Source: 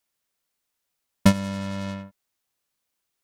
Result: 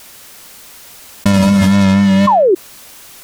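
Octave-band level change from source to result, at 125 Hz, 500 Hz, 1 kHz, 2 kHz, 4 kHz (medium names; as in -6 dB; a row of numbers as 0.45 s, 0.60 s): +14.0 dB, +20.0 dB, +20.5 dB, +14.0 dB, +13.0 dB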